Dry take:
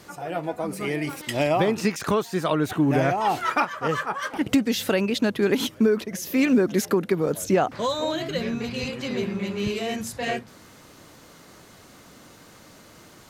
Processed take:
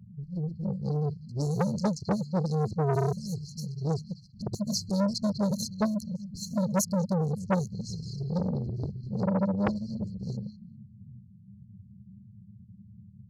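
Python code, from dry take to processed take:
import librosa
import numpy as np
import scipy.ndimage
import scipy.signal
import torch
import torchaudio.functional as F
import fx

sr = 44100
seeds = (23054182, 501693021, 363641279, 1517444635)

p1 = fx.wiener(x, sr, points=15)
p2 = scipy.signal.sosfilt(scipy.signal.butter(2, 86.0, 'highpass', fs=sr, output='sos'), p1)
p3 = fx.env_lowpass(p2, sr, base_hz=340.0, full_db=-18.0)
p4 = fx.peak_eq(p3, sr, hz=2000.0, db=11.5, octaves=0.56)
p5 = fx.rider(p4, sr, range_db=4, speed_s=0.5)
p6 = p4 + (p5 * librosa.db_to_amplitude(0.5))
p7 = fx.env_flanger(p6, sr, rest_ms=10.9, full_db=-13.0)
p8 = fx.brickwall_bandstop(p7, sr, low_hz=210.0, high_hz=4100.0)
p9 = p8 + fx.echo_stepped(p8, sr, ms=198, hz=3100.0, octaves=-1.4, feedback_pct=70, wet_db=-7.0, dry=0)
p10 = fx.transformer_sat(p9, sr, knee_hz=1000.0)
y = p10 * librosa.db_to_amplitude(3.0)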